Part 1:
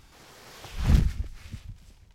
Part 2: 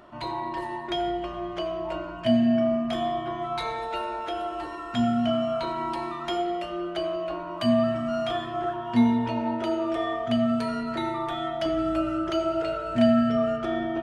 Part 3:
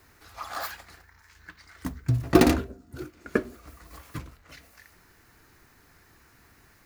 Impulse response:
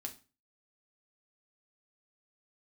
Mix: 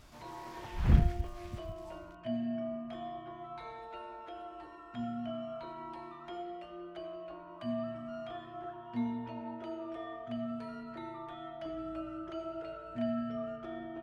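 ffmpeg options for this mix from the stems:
-filter_complex "[0:a]acrusher=bits=8:mode=log:mix=0:aa=0.000001,volume=-3.5dB[link_01];[1:a]highshelf=frequency=4300:gain=-8,volume=-14.5dB[link_02];[link_01][link_02]amix=inputs=2:normalize=0,acrossover=split=2800[link_03][link_04];[link_04]acompressor=threshold=-59dB:ratio=4:attack=1:release=60[link_05];[link_03][link_05]amix=inputs=2:normalize=0"

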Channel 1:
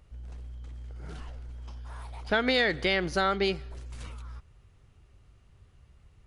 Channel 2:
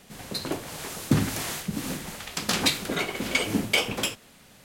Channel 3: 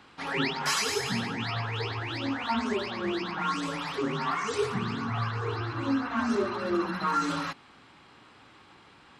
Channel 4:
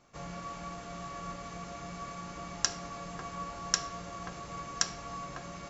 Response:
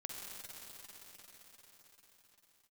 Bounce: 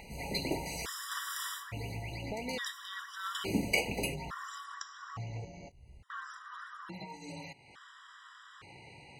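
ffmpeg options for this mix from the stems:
-filter_complex "[0:a]volume=-8dB[link_01];[1:a]volume=8dB,afade=type=out:start_time=1.45:duration=0.28:silence=0.223872,afade=type=in:start_time=3.12:duration=0.46:silence=0.266073[link_02];[2:a]equalizer=frequency=125:width_type=o:width=1:gain=10,equalizer=frequency=250:width_type=o:width=1:gain=-6,equalizer=frequency=500:width_type=o:width=1:gain=4,equalizer=frequency=2000:width_type=o:width=1:gain=6,equalizer=frequency=8000:width_type=o:width=1:gain=7,acompressor=threshold=-30dB:ratio=6,volume=-7.5dB,asplit=3[link_03][link_04][link_05];[link_03]atrim=end=5.45,asetpts=PTS-STARTPTS,afade=type=out:start_time=5.446:duration=0.004:curve=hsin[link_06];[link_04]atrim=start=5.45:end=6.1,asetpts=PTS-STARTPTS,volume=0[link_07];[link_05]atrim=start=6.1,asetpts=PTS-STARTPTS,afade=type=in:duration=0.004:curve=hsin[link_08];[link_06][link_07][link_08]concat=n=3:v=0:a=1[link_09];[3:a]highshelf=frequency=6600:gain=-11,volume=-6dB,asplit=2[link_10][link_11];[link_11]volume=-10.5dB[link_12];[link_01][link_09][link_10]amix=inputs=3:normalize=0,acompressor=mode=upward:threshold=-41dB:ratio=2.5,alimiter=level_in=2dB:limit=-24dB:level=0:latency=1:release=307,volume=-2dB,volume=0dB[link_13];[4:a]atrim=start_sample=2205[link_14];[link_12][link_14]afir=irnorm=-1:irlink=0[link_15];[link_02][link_13][link_15]amix=inputs=3:normalize=0,afftfilt=real='re*gt(sin(2*PI*0.58*pts/sr)*(1-2*mod(floor(b*sr/1024/980),2)),0)':imag='im*gt(sin(2*PI*0.58*pts/sr)*(1-2*mod(floor(b*sr/1024/980),2)),0)':win_size=1024:overlap=0.75"

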